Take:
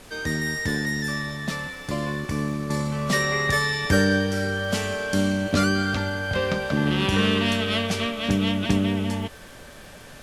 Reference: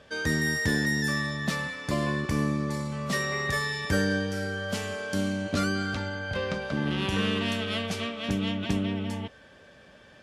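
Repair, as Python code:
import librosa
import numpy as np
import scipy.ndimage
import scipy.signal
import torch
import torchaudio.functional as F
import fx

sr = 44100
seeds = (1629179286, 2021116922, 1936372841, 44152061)

y = fx.fix_declick_ar(x, sr, threshold=6.5)
y = fx.noise_reduce(y, sr, print_start_s=9.7, print_end_s=10.2, reduce_db=10.0)
y = fx.fix_level(y, sr, at_s=2.7, step_db=-6.0)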